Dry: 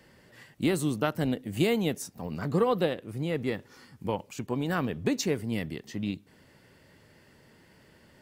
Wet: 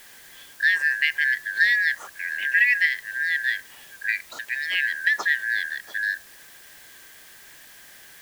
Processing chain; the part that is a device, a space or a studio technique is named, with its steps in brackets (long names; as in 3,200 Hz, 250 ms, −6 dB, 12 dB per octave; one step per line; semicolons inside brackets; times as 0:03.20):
0:04.12–0:04.75: spectral tilt +2.5 dB per octave
split-band scrambled radio (band-splitting scrambler in four parts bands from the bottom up 4123; band-pass filter 400–3,300 Hz; white noise bed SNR 23 dB)
level +6 dB